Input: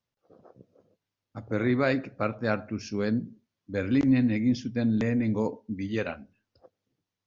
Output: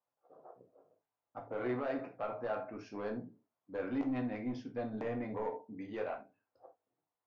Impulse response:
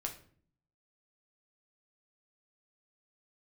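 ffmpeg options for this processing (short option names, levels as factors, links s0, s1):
-filter_complex "[0:a]bandpass=f=790:t=q:w=2.1:csg=0,alimiter=level_in=2.11:limit=0.0631:level=0:latency=1:release=43,volume=0.473,asoftclip=type=tanh:threshold=0.0211[s0];[1:a]atrim=start_sample=2205,atrim=end_sample=3969[s1];[s0][s1]afir=irnorm=-1:irlink=0,volume=1.78"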